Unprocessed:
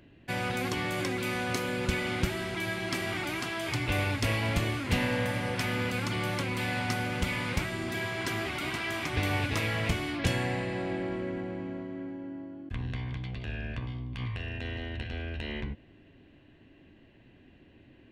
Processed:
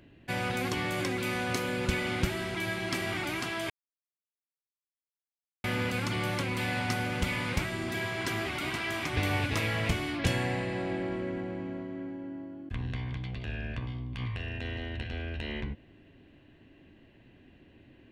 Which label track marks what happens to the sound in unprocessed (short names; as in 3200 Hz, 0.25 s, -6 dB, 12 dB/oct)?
3.700000	5.640000	mute